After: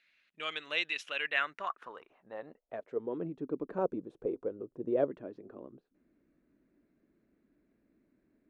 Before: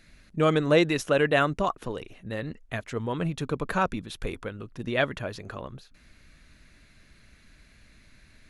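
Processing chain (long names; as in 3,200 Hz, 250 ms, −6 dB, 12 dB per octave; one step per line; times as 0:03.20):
0:03.78–0:05.11: octave-band graphic EQ 125/250/500/1,000/2,000/4,000/8,000 Hz +7/−4/+10/+3/−4/−4/+9 dB
band-pass filter sweep 2,800 Hz → 320 Hz, 0:01.12–0:03.28
parametric band 93 Hz −8.5 dB 1.6 octaves
one half of a high-frequency compander decoder only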